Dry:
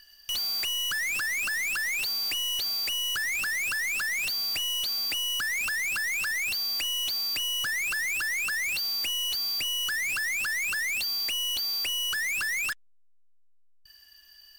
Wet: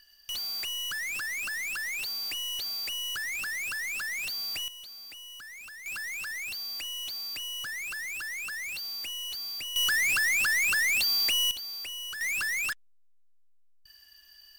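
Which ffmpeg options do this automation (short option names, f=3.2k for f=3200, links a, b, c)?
-af "asetnsamples=n=441:p=0,asendcmd='4.68 volume volume -16dB;5.86 volume volume -7dB;9.76 volume volume 3.5dB;11.51 volume volume -8.5dB;12.21 volume volume -1dB',volume=-4.5dB"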